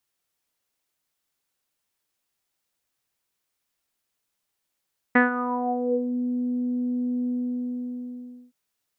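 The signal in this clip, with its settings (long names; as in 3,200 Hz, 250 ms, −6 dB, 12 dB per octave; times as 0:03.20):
subtractive voice saw B3 24 dB per octave, low-pass 340 Hz, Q 5.6, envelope 2.5 octaves, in 1.00 s, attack 7.9 ms, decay 0.14 s, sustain −12.5 dB, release 1.25 s, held 2.12 s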